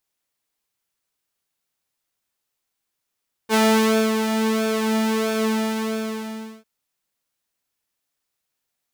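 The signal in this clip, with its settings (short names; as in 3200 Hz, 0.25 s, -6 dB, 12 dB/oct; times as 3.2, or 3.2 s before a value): synth patch with pulse-width modulation A3, sub -29 dB, noise -20.5 dB, filter highpass, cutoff 160 Hz, Q 0.92, filter envelope 1.5 oct, attack 50 ms, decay 0.58 s, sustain -8 dB, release 1.23 s, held 1.92 s, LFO 1.5 Hz, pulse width 32%, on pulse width 10%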